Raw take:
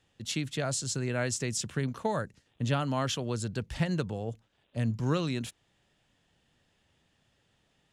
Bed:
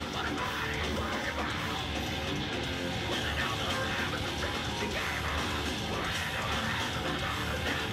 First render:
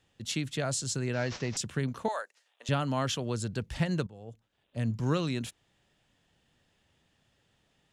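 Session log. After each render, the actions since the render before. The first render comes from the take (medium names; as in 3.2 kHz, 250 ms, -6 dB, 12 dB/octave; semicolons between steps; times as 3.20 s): 1.13–1.57 s: CVSD coder 32 kbps; 2.08–2.69 s: high-pass 600 Hz 24 dB/octave; 4.07–4.98 s: fade in, from -17.5 dB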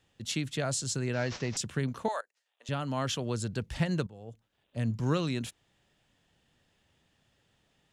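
2.21–3.20 s: fade in, from -19 dB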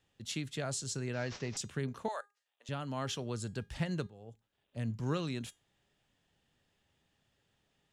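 feedback comb 410 Hz, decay 0.25 s, harmonics all, mix 50%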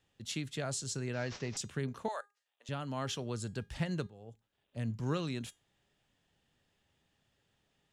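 no audible change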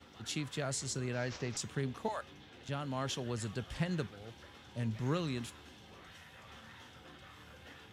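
add bed -22 dB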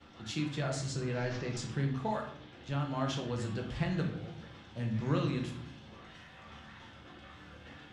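distance through air 78 m; simulated room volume 130 m³, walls mixed, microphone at 0.79 m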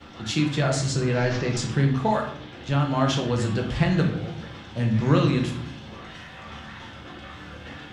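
trim +11.5 dB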